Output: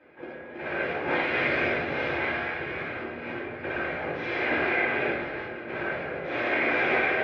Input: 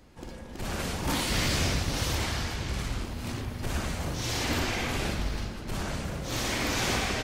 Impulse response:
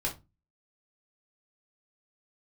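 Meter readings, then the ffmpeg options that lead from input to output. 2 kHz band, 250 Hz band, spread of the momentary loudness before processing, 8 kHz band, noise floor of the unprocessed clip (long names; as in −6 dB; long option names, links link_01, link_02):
+8.5 dB, 0.0 dB, 9 LU, below −30 dB, −43 dBFS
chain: -filter_complex "[0:a]highpass=380,equalizer=frequency=420:width_type=q:width=4:gain=7,equalizer=frequency=680:width_type=q:width=4:gain=3,equalizer=frequency=1000:width_type=q:width=4:gain=-6,equalizer=frequency=1600:width_type=q:width=4:gain=4,equalizer=frequency=2200:width_type=q:width=4:gain=6,lowpass=frequency=2500:width=0.5412,lowpass=frequency=2500:width=1.3066[link_01];[1:a]atrim=start_sample=2205[link_02];[link_01][link_02]afir=irnorm=-1:irlink=0"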